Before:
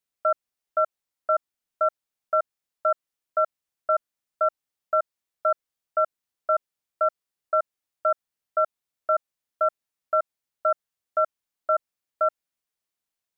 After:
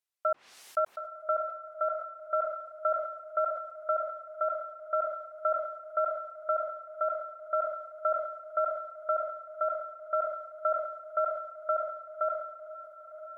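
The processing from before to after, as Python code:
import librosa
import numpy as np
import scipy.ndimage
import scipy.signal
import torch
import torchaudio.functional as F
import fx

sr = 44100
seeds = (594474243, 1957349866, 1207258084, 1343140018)

y = fx.highpass(x, sr, hz=660.0, slope=6)
y = fx.env_lowpass_down(y, sr, base_hz=1200.0, full_db=-22.0)
y = fx.rider(y, sr, range_db=5, speed_s=0.5)
y = fx.echo_diffused(y, sr, ms=977, feedback_pct=60, wet_db=-12.0)
y = fx.sustainer(y, sr, db_per_s=64.0)
y = y * librosa.db_to_amplitude(-3.0)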